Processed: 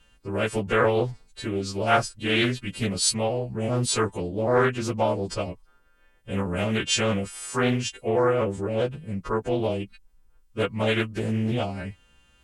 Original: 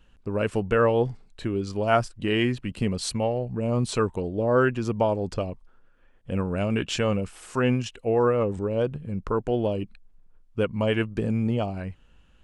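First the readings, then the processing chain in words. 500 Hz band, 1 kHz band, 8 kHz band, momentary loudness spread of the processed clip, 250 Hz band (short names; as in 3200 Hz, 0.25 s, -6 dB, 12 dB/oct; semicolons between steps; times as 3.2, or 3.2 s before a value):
-0.5 dB, +1.5 dB, +9.5 dB, 10 LU, -1.0 dB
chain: frequency quantiser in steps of 2 st; Doppler distortion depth 0.36 ms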